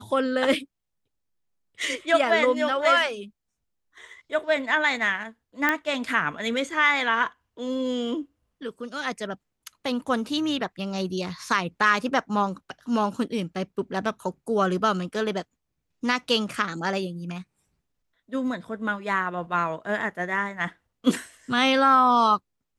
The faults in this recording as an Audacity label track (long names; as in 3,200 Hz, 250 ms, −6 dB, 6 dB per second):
5.690000	5.690000	click −9 dBFS